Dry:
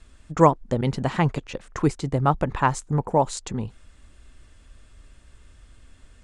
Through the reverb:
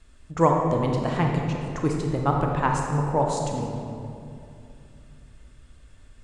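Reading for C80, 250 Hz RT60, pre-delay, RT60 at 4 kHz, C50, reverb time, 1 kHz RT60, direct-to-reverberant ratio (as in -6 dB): 3.0 dB, 3.3 s, 25 ms, 1.5 s, 1.5 dB, 2.6 s, 2.4 s, 0.5 dB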